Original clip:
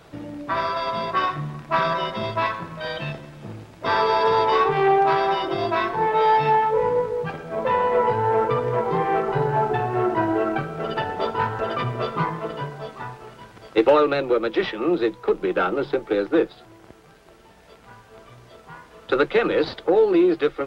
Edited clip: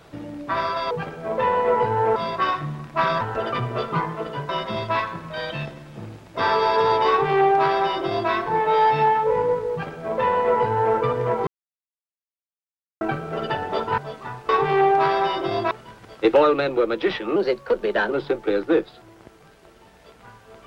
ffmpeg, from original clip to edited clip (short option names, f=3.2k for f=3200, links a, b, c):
-filter_complex "[0:a]asplit=12[a][b][c][d][e][f][g][h][i][j][k][l];[a]atrim=end=0.912[m];[b]atrim=start=7.178:end=8.432[n];[c]atrim=start=0.908:end=1.962[o];[d]atrim=start=11.448:end=12.732[p];[e]atrim=start=1.958:end=8.94,asetpts=PTS-STARTPTS,afade=t=out:st=6.978:d=0.004:c=hsin[q];[f]atrim=start=8.94:end=10.48,asetpts=PTS-STARTPTS,volume=0[r];[g]atrim=start=10.48:end=11.452,asetpts=PTS-STARTPTS,afade=t=in:d=0.004:c=hsin[s];[h]atrim=start=12.728:end=13.242[t];[i]atrim=start=4.558:end=5.782[u];[j]atrim=start=13.238:end=14.894[v];[k]atrim=start=14.89:end=15.74,asetpts=PTS-STARTPTS,asetrate=50274,aresample=44100[w];[l]atrim=start=15.736[x];[m][n]acrossfade=d=0.004:c1=hsin:c2=hsin[y];[y][o]acrossfade=d=0.004:c1=hsin:c2=hsin[z];[z][p]acrossfade=d=0.004:c1=hsin:c2=hsin[aa];[q][r][s]concat=n=3:v=0:a=1[ab];[aa][ab]acrossfade=d=0.004:c1=hsin:c2=hsin[ac];[ac][t]acrossfade=d=0.004:c1=hsin:c2=hsin[ad];[ad][u]acrossfade=d=0.004:c1=hsin:c2=hsin[ae];[ae][v]acrossfade=d=0.004:c1=hsin:c2=hsin[af];[af][w]acrossfade=d=0.004:c1=hsin:c2=hsin[ag];[ag][x]acrossfade=d=0.004:c1=hsin:c2=hsin"